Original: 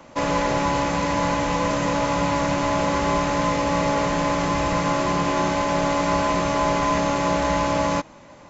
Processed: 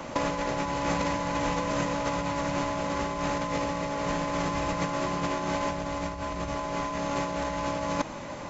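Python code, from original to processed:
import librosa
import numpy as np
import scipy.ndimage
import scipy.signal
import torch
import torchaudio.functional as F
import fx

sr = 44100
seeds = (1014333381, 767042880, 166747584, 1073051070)

y = fx.peak_eq(x, sr, hz=63.0, db=11.5, octaves=1.4, at=(5.7, 6.58))
y = fx.over_compress(y, sr, threshold_db=-27.0, ratio=-0.5)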